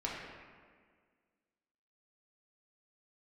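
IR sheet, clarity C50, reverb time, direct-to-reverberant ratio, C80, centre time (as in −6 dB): 0.0 dB, 1.8 s, −5.5 dB, 2.0 dB, 92 ms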